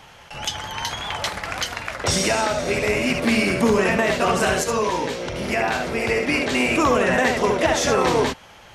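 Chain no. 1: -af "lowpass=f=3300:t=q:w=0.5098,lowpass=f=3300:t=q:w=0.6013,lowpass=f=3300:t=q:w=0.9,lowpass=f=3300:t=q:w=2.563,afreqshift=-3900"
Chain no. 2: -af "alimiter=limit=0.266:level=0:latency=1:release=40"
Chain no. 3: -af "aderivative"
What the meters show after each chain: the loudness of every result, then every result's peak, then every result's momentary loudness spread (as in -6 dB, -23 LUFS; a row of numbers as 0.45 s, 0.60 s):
-18.5 LUFS, -22.0 LUFS, -31.0 LUFS; -5.5 dBFS, -11.5 dBFS, -12.5 dBFS; 12 LU, 8 LU, 8 LU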